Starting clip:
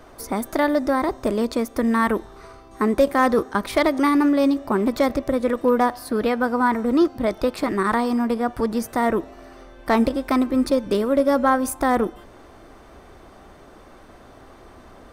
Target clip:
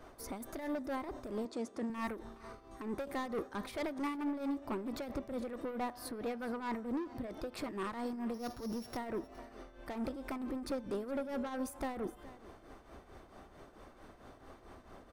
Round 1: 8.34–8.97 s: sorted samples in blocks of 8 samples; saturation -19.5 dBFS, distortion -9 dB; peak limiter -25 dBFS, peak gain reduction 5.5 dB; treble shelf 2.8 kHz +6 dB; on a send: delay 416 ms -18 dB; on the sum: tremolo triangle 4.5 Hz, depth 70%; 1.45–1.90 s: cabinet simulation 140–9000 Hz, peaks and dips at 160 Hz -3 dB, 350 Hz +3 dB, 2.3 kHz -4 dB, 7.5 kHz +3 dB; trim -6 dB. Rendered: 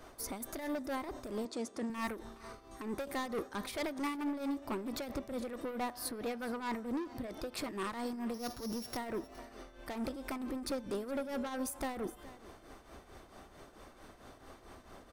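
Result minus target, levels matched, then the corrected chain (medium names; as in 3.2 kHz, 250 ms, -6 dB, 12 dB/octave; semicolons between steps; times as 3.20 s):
4 kHz band +4.5 dB
8.34–8.97 s: sorted samples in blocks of 8 samples; saturation -19.5 dBFS, distortion -9 dB; peak limiter -25 dBFS, peak gain reduction 5.5 dB; treble shelf 2.8 kHz -2 dB; on a send: delay 416 ms -18 dB; on the sum: tremolo triangle 4.5 Hz, depth 70%; 1.45–1.90 s: cabinet simulation 140–9000 Hz, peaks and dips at 160 Hz -3 dB, 350 Hz +3 dB, 2.3 kHz -4 dB, 7.5 kHz +3 dB; trim -6 dB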